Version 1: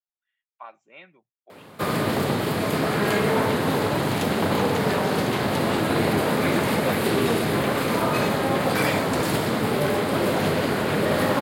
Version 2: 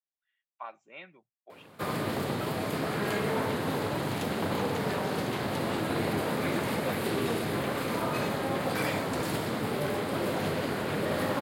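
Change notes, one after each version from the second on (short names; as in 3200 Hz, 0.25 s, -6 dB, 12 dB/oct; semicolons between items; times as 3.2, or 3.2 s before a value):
background -6.5 dB; reverb: off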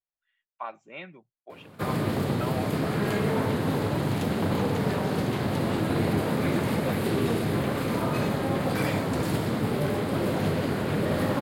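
speech +4.5 dB; master: add low shelf 290 Hz +9.5 dB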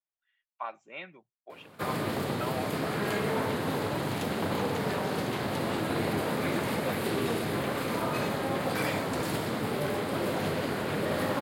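master: add low shelf 290 Hz -9.5 dB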